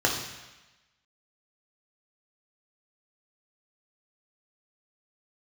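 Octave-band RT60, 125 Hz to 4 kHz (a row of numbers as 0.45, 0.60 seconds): 1.0, 1.0, 1.0, 1.1, 1.2, 1.1 seconds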